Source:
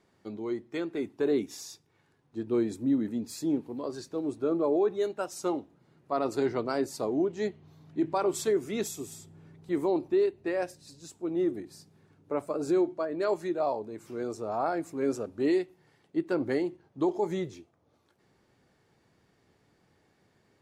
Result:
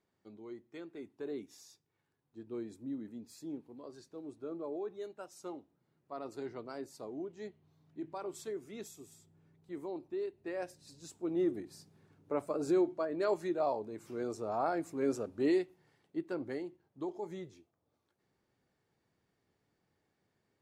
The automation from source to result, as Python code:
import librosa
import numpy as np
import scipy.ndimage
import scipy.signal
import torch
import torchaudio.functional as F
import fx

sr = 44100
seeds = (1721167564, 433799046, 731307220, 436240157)

y = fx.gain(x, sr, db=fx.line((10.08, -14.0), (11.05, -3.5), (15.6, -3.5), (16.69, -12.0)))